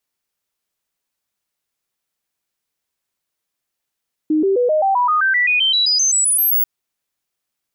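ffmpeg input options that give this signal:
ffmpeg -f lavfi -i "aevalsrc='0.237*clip(min(mod(t,0.13),0.13-mod(t,0.13))/0.005,0,1)*sin(2*PI*309*pow(2,floor(t/0.13)/3)*mod(t,0.13))':duration=2.34:sample_rate=44100" out.wav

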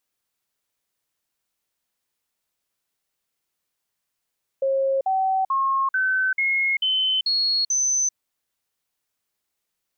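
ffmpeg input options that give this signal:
ffmpeg -f lavfi -i "aevalsrc='0.119*clip(min(mod(t,0.44),0.39-mod(t,0.44))/0.005,0,1)*sin(2*PI*540*pow(2,floor(t/0.44)/2)*mod(t,0.44))':duration=3.52:sample_rate=44100" out.wav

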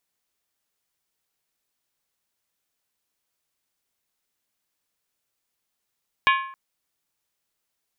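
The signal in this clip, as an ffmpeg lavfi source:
ffmpeg -f lavfi -i "aevalsrc='0.178*pow(10,-3*t/0.6)*sin(2*PI*1070*t)+0.133*pow(10,-3*t/0.475)*sin(2*PI*1705.6*t)+0.1*pow(10,-3*t/0.411)*sin(2*PI*2285.5*t)+0.075*pow(10,-3*t/0.396)*sin(2*PI*2456.7*t)+0.0562*pow(10,-3*t/0.368)*sin(2*PI*2838.7*t)+0.0422*pow(10,-3*t/0.351)*sin(2*PI*3122.3*t)+0.0316*pow(10,-3*t/0.338)*sin(2*PI*3376.9*t)+0.0237*pow(10,-3*t/0.321)*sin(2*PI*3746.1*t)':duration=0.27:sample_rate=44100" out.wav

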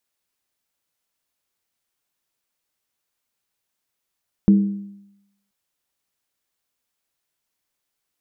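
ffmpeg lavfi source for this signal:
ffmpeg -f lavfi -i "aevalsrc='0.422*pow(10,-3*t/0.85)*sin(2*PI*200*t)+0.112*pow(10,-3*t/0.673)*sin(2*PI*318.8*t)+0.0299*pow(10,-3*t/0.582)*sin(2*PI*427.2*t)+0.00794*pow(10,-3*t/0.561)*sin(2*PI*459.2*t)+0.00211*pow(10,-3*t/0.522)*sin(2*PI*530.6*t)':duration=1.03:sample_rate=44100" out.wav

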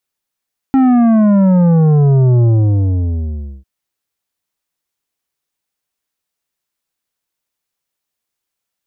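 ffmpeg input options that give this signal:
ffmpeg -f lavfi -i "aevalsrc='0.398*clip((2.9-t)/1.21,0,1)*tanh(2.99*sin(2*PI*270*2.9/log(65/270)*(exp(log(65/270)*t/2.9)-1)))/tanh(2.99)':duration=2.9:sample_rate=44100" out.wav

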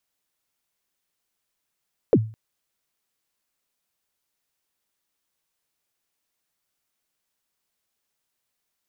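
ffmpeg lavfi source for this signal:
ffmpeg -f lavfi -i "aevalsrc='0.355*pow(10,-3*t/0.37)*sin(2*PI*(550*0.053/log(110/550)*(exp(log(110/550)*min(t,0.053)/0.053)-1)+110*max(t-0.053,0)))':duration=0.21:sample_rate=44100" out.wav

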